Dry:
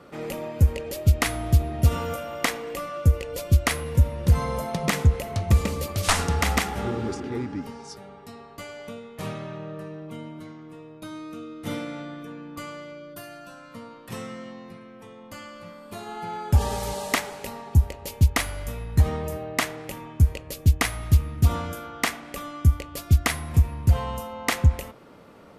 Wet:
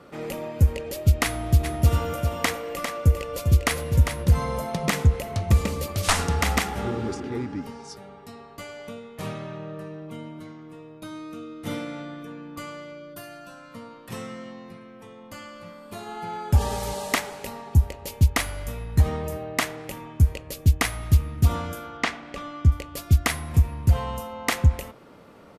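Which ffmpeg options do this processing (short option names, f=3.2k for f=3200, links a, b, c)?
-filter_complex "[0:a]asplit=3[a][b][c];[a]afade=t=out:st=1.63:d=0.02[d];[b]aecho=1:1:400:0.447,afade=t=in:st=1.63:d=0.02,afade=t=out:st=4.23:d=0.02[e];[c]afade=t=in:st=4.23:d=0.02[f];[d][e][f]amix=inputs=3:normalize=0,asettb=1/sr,asplit=3[g][h][i];[g]atrim=end=21.974[j];[h]atrim=start=21.97:end=22.72,asetpts=PTS-STARTPTS,afade=t=in:d=0.004:c=qsin,afade=t=out:st=0.746:d=0.004:c=qsin,lowpass=4.9k[k];[i]atrim=start=22.716[l];[j][k]acrossfade=d=0.004:c1=hsin:c2=qsin[m];[m][l]acrossfade=d=0.004:c1=qsin:c2=hsin"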